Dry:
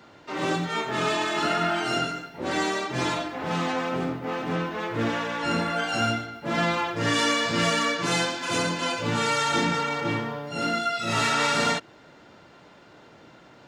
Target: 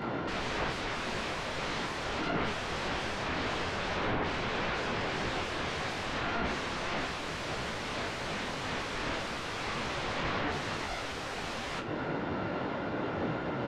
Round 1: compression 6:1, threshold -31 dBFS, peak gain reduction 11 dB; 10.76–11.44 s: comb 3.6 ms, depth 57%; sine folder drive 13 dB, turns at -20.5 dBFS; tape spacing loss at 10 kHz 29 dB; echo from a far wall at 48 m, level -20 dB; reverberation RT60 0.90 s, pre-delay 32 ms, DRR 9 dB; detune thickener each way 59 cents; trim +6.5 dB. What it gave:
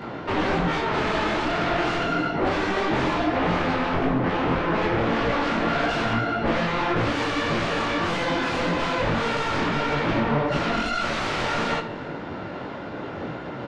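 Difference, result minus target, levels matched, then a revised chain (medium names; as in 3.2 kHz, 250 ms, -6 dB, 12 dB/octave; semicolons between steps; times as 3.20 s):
sine folder: distortion -31 dB
compression 6:1, threshold -31 dBFS, peak gain reduction 11 dB; 10.76–11.44 s: comb 3.6 ms, depth 57%; sine folder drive 13 dB, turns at -28.5 dBFS; tape spacing loss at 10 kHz 29 dB; echo from a far wall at 48 m, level -20 dB; reverberation RT60 0.90 s, pre-delay 32 ms, DRR 9 dB; detune thickener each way 59 cents; trim +6.5 dB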